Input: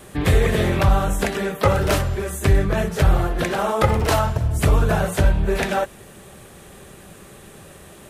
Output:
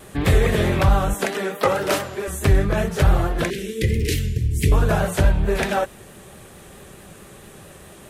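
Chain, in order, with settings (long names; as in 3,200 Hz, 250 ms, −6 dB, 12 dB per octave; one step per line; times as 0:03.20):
0:01.14–0:02.28: high-pass filter 240 Hz 12 dB per octave
pitch vibrato 4.6 Hz 48 cents
0:03.50–0:04.72: elliptic band-stop filter 420–2,000 Hz, stop band 40 dB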